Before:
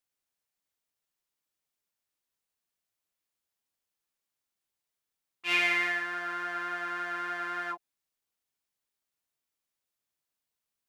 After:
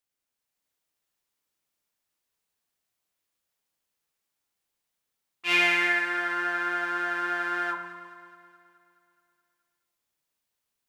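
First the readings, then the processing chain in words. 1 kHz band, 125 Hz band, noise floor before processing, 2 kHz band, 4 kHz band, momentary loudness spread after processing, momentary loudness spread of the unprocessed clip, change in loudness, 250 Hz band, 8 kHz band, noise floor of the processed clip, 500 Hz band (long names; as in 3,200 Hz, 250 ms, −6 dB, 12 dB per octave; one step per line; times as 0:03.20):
+5.0 dB, +5.0 dB, below −85 dBFS, +5.0 dB, +4.5 dB, 14 LU, 12 LU, +5.0 dB, +7.0 dB, +4.0 dB, −84 dBFS, +6.5 dB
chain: automatic gain control gain up to 4 dB
on a send: delay that swaps between a low-pass and a high-pass 106 ms, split 1,100 Hz, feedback 76%, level −12 dB
on the sum: spring reverb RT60 1.1 s, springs 34 ms, chirp 35 ms, DRR 7.5 dB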